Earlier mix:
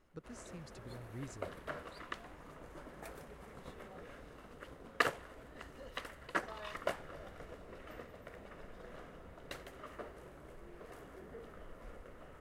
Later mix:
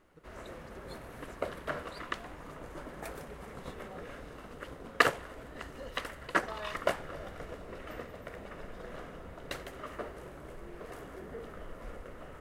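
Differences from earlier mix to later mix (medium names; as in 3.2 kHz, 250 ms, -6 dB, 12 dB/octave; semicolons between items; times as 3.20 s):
speech -10.0 dB; background +7.0 dB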